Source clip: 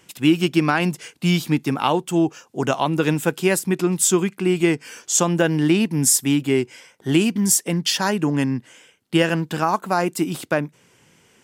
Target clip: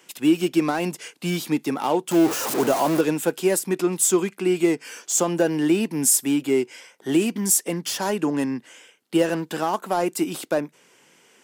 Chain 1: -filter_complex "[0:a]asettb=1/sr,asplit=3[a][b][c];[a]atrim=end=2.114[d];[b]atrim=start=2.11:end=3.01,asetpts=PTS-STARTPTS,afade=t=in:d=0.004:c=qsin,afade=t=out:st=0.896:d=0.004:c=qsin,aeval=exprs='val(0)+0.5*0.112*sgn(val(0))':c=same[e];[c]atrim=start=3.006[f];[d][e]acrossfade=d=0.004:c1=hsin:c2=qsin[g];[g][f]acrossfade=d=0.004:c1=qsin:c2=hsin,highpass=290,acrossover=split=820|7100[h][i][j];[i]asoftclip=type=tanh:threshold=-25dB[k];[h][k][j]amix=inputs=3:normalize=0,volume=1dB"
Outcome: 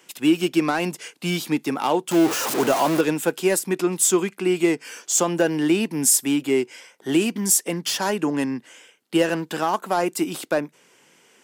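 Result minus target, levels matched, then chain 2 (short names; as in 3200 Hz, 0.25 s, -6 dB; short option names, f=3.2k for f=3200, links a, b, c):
soft clip: distortion -4 dB
-filter_complex "[0:a]asettb=1/sr,asplit=3[a][b][c];[a]atrim=end=2.114[d];[b]atrim=start=2.11:end=3.01,asetpts=PTS-STARTPTS,afade=t=in:d=0.004:c=qsin,afade=t=out:st=0.896:d=0.004:c=qsin,aeval=exprs='val(0)+0.5*0.112*sgn(val(0))':c=same[e];[c]atrim=start=3.006[f];[d][e]acrossfade=d=0.004:c1=hsin:c2=qsin[g];[g][f]acrossfade=d=0.004:c1=qsin:c2=hsin,highpass=290,acrossover=split=820|7100[h][i][j];[i]asoftclip=type=tanh:threshold=-31.5dB[k];[h][k][j]amix=inputs=3:normalize=0,volume=1dB"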